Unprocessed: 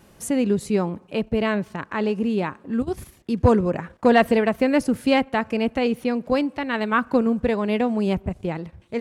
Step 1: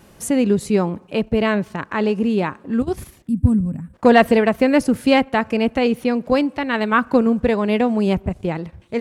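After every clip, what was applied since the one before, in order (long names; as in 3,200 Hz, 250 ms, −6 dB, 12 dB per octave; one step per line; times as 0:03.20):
gain on a spectral selection 0:03.28–0:03.94, 300–7,600 Hz −22 dB
level +4 dB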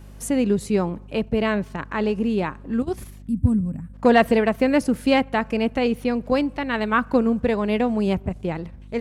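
mains hum 50 Hz, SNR 20 dB
level −3.5 dB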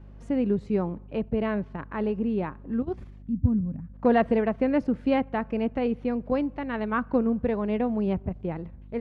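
head-to-tape spacing loss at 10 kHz 34 dB
level −3.5 dB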